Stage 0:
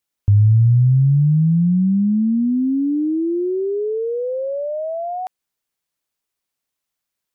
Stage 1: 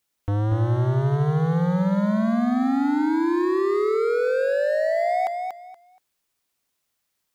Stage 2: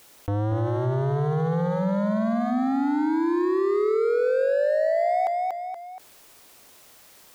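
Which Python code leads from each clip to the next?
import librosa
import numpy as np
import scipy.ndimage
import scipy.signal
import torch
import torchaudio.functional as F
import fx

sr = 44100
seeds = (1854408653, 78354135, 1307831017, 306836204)

y1 = np.clip(10.0 ** (25.5 / 20.0) * x, -1.0, 1.0) / 10.0 ** (25.5 / 20.0)
y1 = fx.echo_feedback(y1, sr, ms=237, feedback_pct=22, wet_db=-5.5)
y1 = y1 * 10.0 ** (4.0 / 20.0)
y2 = fx.peak_eq(y1, sr, hz=540.0, db=6.0, octaves=1.9)
y2 = fx.hum_notches(y2, sr, base_hz=60, count=4)
y2 = fx.env_flatten(y2, sr, amount_pct=50)
y2 = y2 * 10.0 ** (-6.5 / 20.0)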